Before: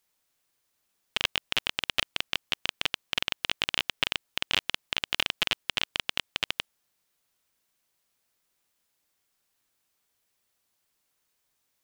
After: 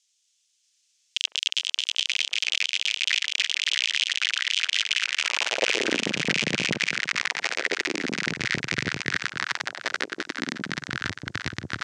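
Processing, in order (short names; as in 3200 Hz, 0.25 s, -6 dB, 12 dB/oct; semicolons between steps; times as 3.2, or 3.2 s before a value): in parallel at -3 dB: bit-crush 5-bit; on the sum: transient shaper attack 0 dB, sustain -12 dB; band shelf 1800 Hz -13.5 dB 3 oct; on a send: echo with dull and thin repeats by turns 0.11 s, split 990 Hz, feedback 63%, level -3 dB; on the sum: high-pass sweep 3200 Hz -> 160 Hz, 4.87–6.17; echoes that change speed 0.629 s, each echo -4 st, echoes 3, each echo -6 dB; LPF 6800 Hz 24 dB/oct; maximiser +21.5 dB; gain -6.5 dB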